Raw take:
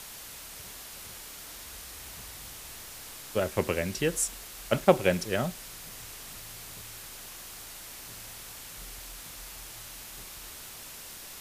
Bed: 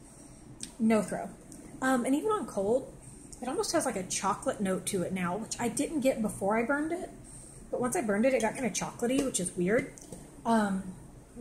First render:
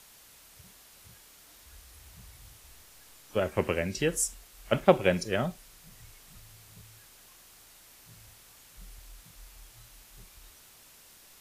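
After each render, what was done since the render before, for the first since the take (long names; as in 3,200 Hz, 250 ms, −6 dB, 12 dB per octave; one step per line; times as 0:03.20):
noise reduction from a noise print 11 dB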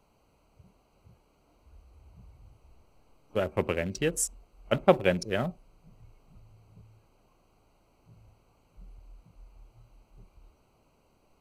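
adaptive Wiener filter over 25 samples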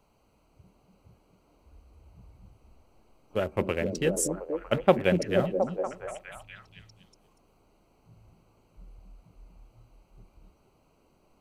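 echo through a band-pass that steps 239 ms, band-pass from 240 Hz, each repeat 0.7 octaves, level 0 dB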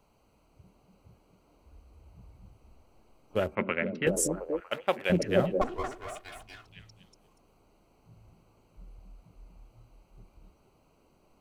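0:03.55–0:04.07: loudspeaker in its box 190–3,000 Hz, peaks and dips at 220 Hz +4 dB, 330 Hz −7 dB, 470 Hz −5 dB, 760 Hz −4 dB, 1,400 Hz +7 dB, 2,100 Hz +7 dB
0:04.60–0:05.10: high-pass filter 1,300 Hz 6 dB per octave
0:05.61–0:06.66: lower of the sound and its delayed copy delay 2.8 ms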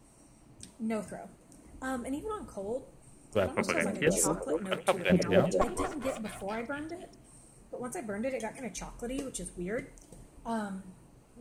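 mix in bed −8 dB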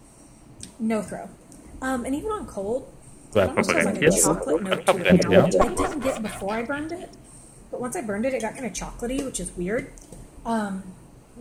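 level +9 dB
brickwall limiter −2 dBFS, peak gain reduction 1 dB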